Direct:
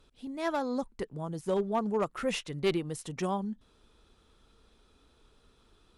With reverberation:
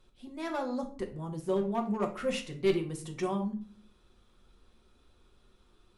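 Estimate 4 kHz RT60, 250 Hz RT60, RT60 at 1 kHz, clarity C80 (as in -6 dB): 0.30 s, 0.70 s, 0.40 s, 16.5 dB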